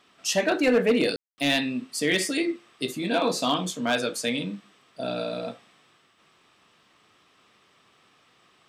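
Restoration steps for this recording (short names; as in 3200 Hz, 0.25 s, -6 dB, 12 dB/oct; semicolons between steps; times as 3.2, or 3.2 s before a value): clip repair -14.5 dBFS; room tone fill 1.16–1.38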